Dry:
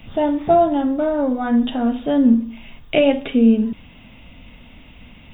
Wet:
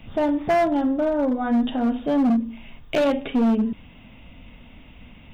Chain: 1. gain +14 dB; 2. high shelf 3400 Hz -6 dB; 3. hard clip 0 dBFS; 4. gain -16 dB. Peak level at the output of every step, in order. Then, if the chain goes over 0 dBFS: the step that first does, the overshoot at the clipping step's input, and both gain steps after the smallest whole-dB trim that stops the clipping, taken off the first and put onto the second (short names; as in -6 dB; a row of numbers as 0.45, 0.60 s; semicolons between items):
+9.5, +9.5, 0.0, -16.0 dBFS; step 1, 9.5 dB; step 1 +4 dB, step 4 -6 dB